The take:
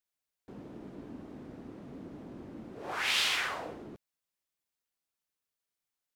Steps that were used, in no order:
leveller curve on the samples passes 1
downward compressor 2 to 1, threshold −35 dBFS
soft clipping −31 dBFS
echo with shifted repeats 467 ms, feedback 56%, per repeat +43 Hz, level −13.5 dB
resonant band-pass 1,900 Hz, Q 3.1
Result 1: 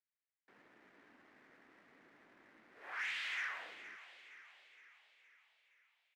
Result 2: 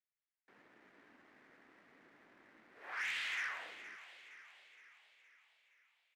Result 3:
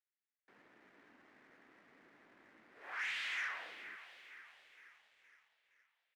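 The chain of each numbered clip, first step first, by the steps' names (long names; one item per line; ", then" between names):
downward compressor, then soft clipping, then resonant band-pass, then leveller curve on the samples, then echo with shifted repeats
downward compressor, then resonant band-pass, then soft clipping, then leveller curve on the samples, then echo with shifted repeats
soft clipping, then downward compressor, then echo with shifted repeats, then resonant band-pass, then leveller curve on the samples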